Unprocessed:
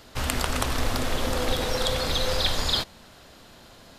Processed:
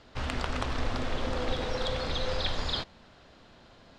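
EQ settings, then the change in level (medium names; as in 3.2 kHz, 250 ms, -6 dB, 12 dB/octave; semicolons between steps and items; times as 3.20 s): distance through air 130 m; -4.5 dB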